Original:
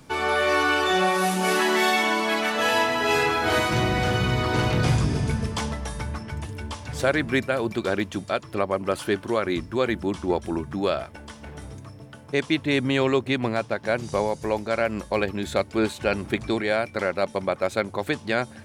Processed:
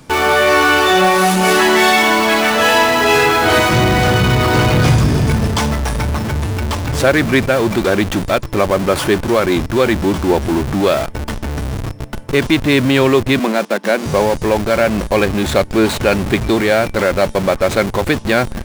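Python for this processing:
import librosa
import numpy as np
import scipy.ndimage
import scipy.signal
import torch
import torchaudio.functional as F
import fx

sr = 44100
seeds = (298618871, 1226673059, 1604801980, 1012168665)

p1 = fx.schmitt(x, sr, flips_db=-36.5)
p2 = x + (p1 * librosa.db_to_amplitude(-5.0))
p3 = fx.cheby1_highpass(p2, sr, hz=190.0, order=5, at=(13.39, 14.06))
y = p3 * librosa.db_to_amplitude(7.5)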